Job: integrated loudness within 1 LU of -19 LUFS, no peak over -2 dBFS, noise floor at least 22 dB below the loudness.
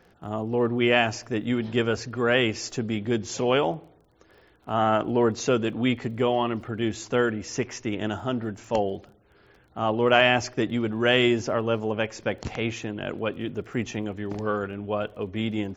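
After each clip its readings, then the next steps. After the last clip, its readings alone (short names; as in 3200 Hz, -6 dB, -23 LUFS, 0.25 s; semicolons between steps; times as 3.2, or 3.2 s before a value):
ticks 26/s; loudness -26.0 LUFS; peak -4.0 dBFS; loudness target -19.0 LUFS
-> de-click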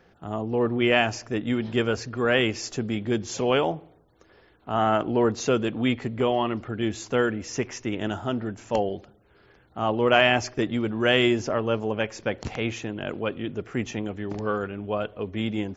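ticks 0/s; loudness -26.0 LUFS; peak -4.0 dBFS; loudness target -19.0 LUFS
-> gain +7 dB; limiter -2 dBFS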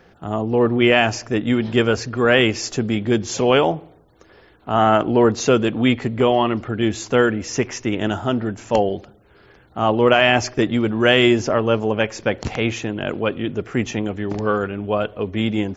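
loudness -19.0 LUFS; peak -2.0 dBFS; noise floor -51 dBFS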